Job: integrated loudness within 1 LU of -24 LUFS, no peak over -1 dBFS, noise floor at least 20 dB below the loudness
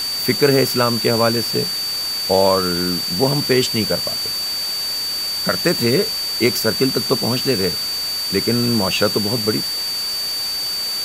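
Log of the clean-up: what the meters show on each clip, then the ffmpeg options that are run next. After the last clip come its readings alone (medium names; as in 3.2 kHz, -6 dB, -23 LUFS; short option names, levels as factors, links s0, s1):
steady tone 4.6 kHz; tone level -21 dBFS; noise floor -23 dBFS; noise floor target -38 dBFS; loudness -17.5 LUFS; peak level -2.0 dBFS; loudness target -24.0 LUFS
-> -af "bandreject=f=4600:w=30"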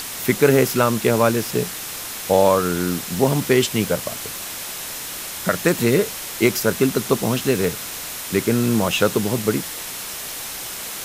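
steady tone not found; noise floor -31 dBFS; noise floor target -41 dBFS
-> -af "afftdn=nr=10:nf=-31"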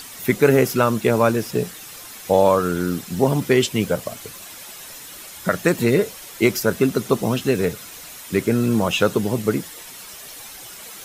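noise floor -39 dBFS; noise floor target -40 dBFS
-> -af "afftdn=nr=6:nf=-39"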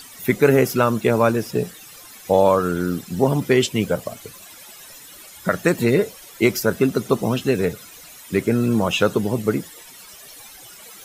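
noise floor -43 dBFS; loudness -20.0 LUFS; peak level -3.5 dBFS; loudness target -24.0 LUFS
-> -af "volume=0.631"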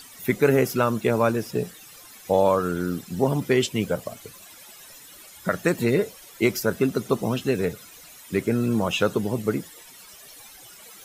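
loudness -24.0 LUFS; peak level -7.5 dBFS; noise floor -47 dBFS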